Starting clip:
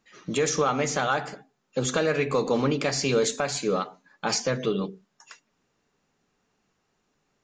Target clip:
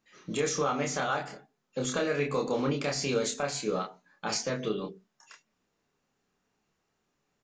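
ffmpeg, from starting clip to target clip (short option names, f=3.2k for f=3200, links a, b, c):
-filter_complex "[0:a]asplit=2[a][b];[b]adelay=28,volume=-3dB[c];[a][c]amix=inputs=2:normalize=0,volume=-6.5dB"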